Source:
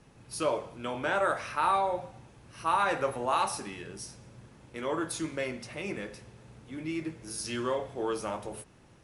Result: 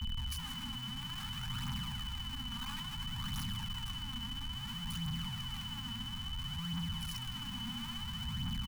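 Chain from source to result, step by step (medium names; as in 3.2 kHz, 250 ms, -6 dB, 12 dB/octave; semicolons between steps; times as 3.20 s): octave divider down 1 oct, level +3 dB; dynamic bell 160 Hz, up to +6 dB, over -46 dBFS, Q 0.85; speed mistake 24 fps film run at 25 fps; reverberation RT60 5.2 s, pre-delay 58 ms, DRR 5 dB; in parallel at 0 dB: compression, threshold -35 dBFS, peak gain reduction 14 dB; on the sum: amplifier tone stack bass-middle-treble 10-0-1; hum notches 50/100/150 Hz; on a send: feedback delay 155 ms, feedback 24%, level -6.5 dB; on the sum: Schmitt trigger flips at -57 dBFS; whistle 3 kHz -46 dBFS; phaser 0.59 Hz, delay 4.4 ms, feedback 50%; elliptic band-stop 240–890 Hz, stop band 40 dB; trim +2.5 dB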